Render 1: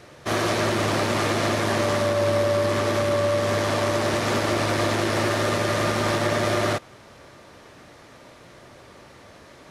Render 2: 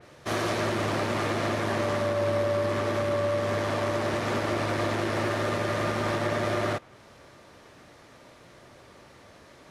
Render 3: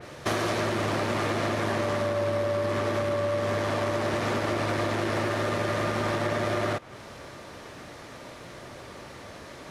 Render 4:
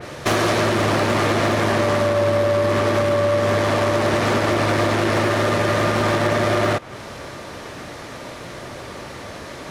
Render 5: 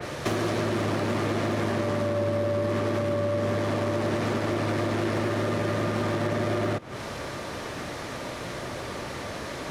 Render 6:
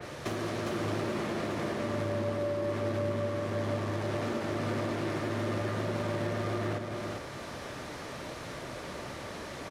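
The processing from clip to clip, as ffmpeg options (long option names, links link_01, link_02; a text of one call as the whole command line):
ffmpeg -i in.wav -af "adynamicequalizer=threshold=0.00708:dfrequency=3300:dqfactor=0.7:tfrequency=3300:tqfactor=0.7:attack=5:release=100:ratio=0.375:range=3:mode=cutabove:tftype=highshelf,volume=-4.5dB" out.wav
ffmpeg -i in.wav -af "acompressor=threshold=-33dB:ratio=6,volume=8.5dB" out.wav
ffmpeg -i in.wav -af "aeval=exprs='0.0944*(abs(mod(val(0)/0.0944+3,4)-2)-1)':channel_layout=same,volume=9dB" out.wav
ffmpeg -i in.wav -filter_complex "[0:a]acrossover=split=100|410[link_01][link_02][link_03];[link_01]acompressor=threshold=-44dB:ratio=4[link_04];[link_02]acompressor=threshold=-27dB:ratio=4[link_05];[link_03]acompressor=threshold=-32dB:ratio=4[link_06];[link_04][link_05][link_06]amix=inputs=3:normalize=0" out.wav
ffmpeg -i in.wav -af "aecho=1:1:407:0.668,volume=-7.5dB" out.wav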